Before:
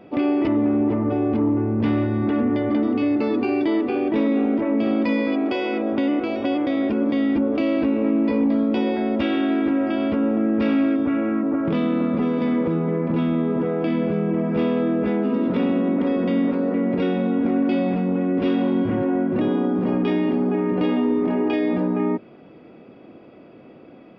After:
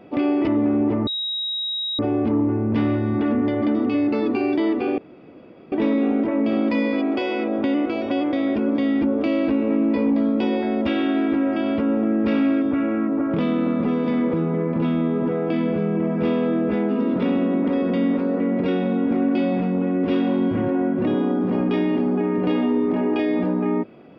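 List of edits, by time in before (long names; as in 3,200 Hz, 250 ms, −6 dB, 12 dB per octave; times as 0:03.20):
0:01.07: insert tone 3,810 Hz −23 dBFS 0.92 s
0:04.06: splice in room tone 0.74 s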